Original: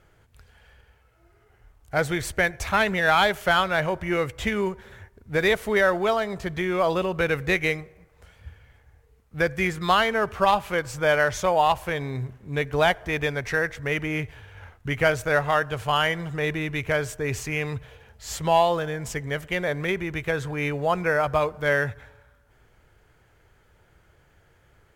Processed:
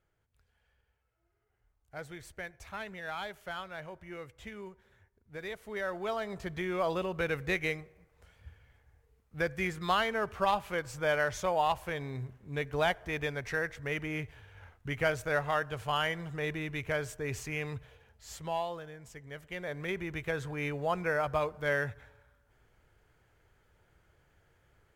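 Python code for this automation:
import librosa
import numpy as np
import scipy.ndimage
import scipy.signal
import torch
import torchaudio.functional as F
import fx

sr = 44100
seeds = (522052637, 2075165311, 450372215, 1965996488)

y = fx.gain(x, sr, db=fx.line((5.55, -19.5), (6.32, -8.5), (17.75, -8.5), (19.11, -19.0), (20.02, -8.0)))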